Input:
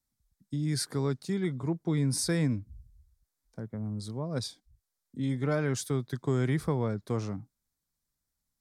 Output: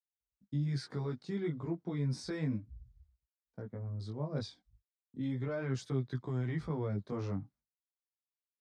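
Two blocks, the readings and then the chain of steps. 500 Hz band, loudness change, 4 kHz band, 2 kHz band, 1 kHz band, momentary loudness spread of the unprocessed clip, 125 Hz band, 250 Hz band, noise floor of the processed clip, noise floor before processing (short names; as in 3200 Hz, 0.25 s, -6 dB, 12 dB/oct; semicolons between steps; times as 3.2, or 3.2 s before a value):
-6.5 dB, -6.0 dB, -10.5 dB, -8.0 dB, -7.5 dB, 12 LU, -5.0 dB, -6.5 dB, under -85 dBFS, -85 dBFS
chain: expander -59 dBFS; HPF 43 Hz; limiter -24 dBFS, peak gain reduction 7 dB; chorus voices 2, 0.34 Hz, delay 18 ms, depth 3 ms; air absorption 150 m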